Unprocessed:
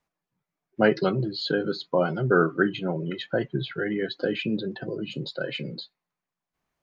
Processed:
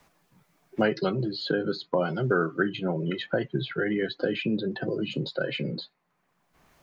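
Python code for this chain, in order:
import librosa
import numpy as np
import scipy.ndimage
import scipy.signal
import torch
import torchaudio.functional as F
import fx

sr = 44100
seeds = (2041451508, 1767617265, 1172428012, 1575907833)

y = fx.band_squash(x, sr, depth_pct=70)
y = y * 10.0 ** (-1.5 / 20.0)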